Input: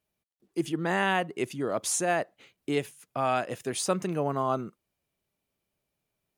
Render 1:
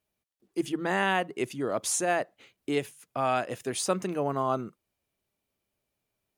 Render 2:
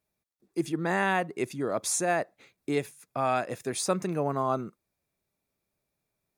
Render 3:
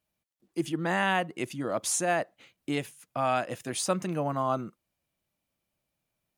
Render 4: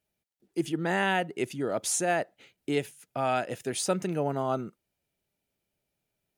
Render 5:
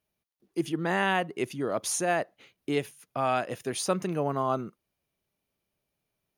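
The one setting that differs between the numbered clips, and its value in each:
notch filter, centre frequency: 160, 3,000, 410, 1,100, 7,700 Hertz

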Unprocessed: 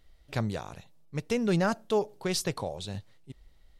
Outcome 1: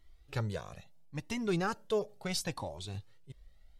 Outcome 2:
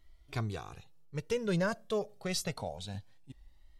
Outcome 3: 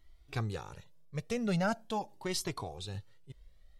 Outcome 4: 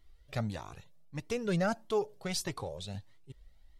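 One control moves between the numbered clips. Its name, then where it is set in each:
flanger whose copies keep moving one way, speed: 0.73, 0.26, 0.42, 1.6 Hertz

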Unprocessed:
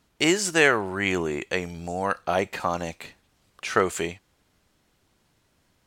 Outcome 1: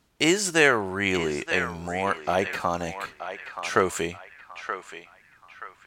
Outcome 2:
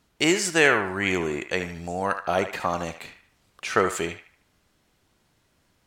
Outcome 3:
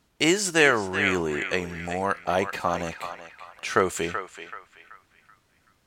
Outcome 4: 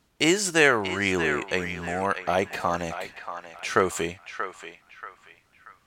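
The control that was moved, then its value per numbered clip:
feedback echo with a band-pass in the loop, delay time: 927, 75, 381, 633 milliseconds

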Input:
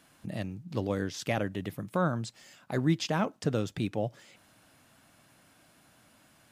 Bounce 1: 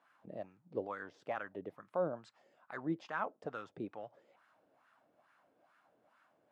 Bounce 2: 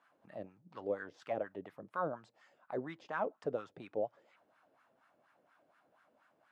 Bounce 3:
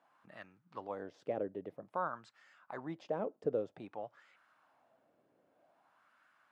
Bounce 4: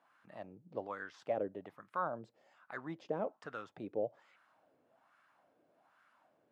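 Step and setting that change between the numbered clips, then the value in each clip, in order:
LFO wah, speed: 2.3, 4.2, 0.52, 1.2 Hertz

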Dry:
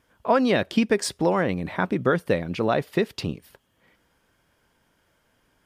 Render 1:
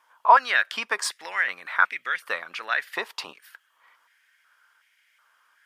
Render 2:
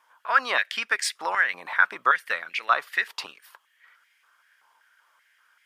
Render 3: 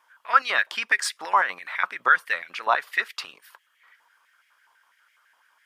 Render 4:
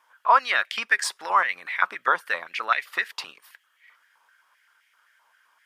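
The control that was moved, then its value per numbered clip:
high-pass on a step sequencer, speed: 2.7, 5.2, 12, 7.7 Hertz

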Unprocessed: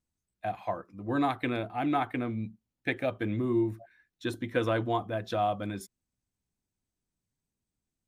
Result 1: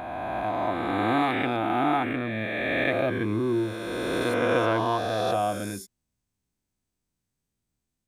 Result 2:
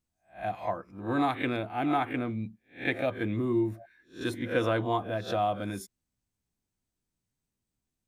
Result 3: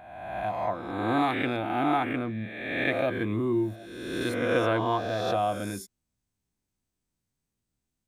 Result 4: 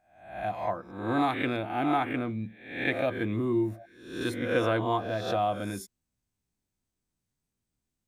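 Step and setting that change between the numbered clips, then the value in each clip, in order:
peak hold with a rise ahead of every peak, rising 60 dB in: 3.14, 0.3, 1.34, 0.63 seconds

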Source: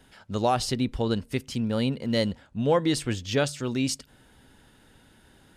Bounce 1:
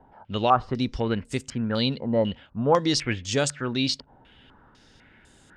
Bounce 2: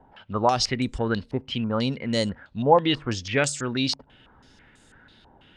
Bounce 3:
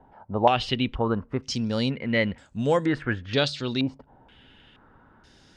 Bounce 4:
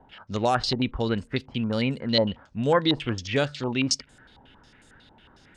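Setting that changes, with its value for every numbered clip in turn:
low-pass on a step sequencer, speed: 4, 6.1, 2.1, 11 Hertz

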